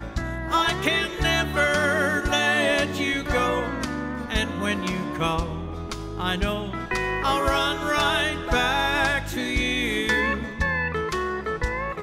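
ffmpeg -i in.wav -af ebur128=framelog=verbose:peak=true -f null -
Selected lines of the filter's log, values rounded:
Integrated loudness:
  I:         -23.8 LUFS
  Threshold: -33.8 LUFS
Loudness range:
  LRA:         4.7 LU
  Threshold: -43.8 LUFS
  LRA low:   -26.8 LUFS
  LRA high:  -22.1 LUFS
True peak:
  Peak:      -10.1 dBFS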